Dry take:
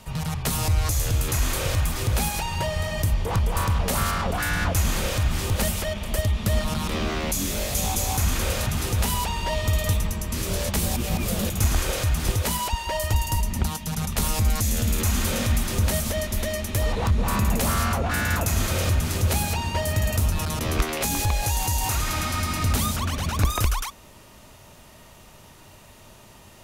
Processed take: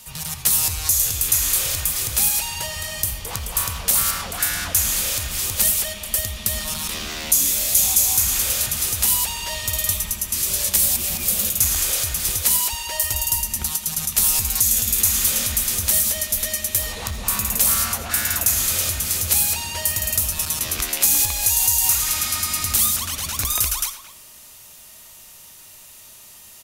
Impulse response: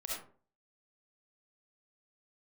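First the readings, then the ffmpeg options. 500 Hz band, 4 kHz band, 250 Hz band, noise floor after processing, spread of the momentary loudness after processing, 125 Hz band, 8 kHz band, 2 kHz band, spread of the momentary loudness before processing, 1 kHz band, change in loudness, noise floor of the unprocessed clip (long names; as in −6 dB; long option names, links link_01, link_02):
−7.5 dB, +5.5 dB, −9.0 dB, −44 dBFS, 7 LU, −9.5 dB, +11.0 dB, 0.0 dB, 3 LU, −4.5 dB, +6.0 dB, −49 dBFS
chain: -filter_complex "[0:a]asplit=2[link_01][link_02];[link_02]adelay=220,highpass=300,lowpass=3400,asoftclip=type=hard:threshold=-22dB,volume=-12dB[link_03];[link_01][link_03]amix=inputs=2:normalize=0,asplit=2[link_04][link_05];[1:a]atrim=start_sample=2205,adelay=14[link_06];[link_05][link_06]afir=irnorm=-1:irlink=0,volume=-11dB[link_07];[link_04][link_07]amix=inputs=2:normalize=0,crystalizer=i=9.5:c=0,volume=-10dB"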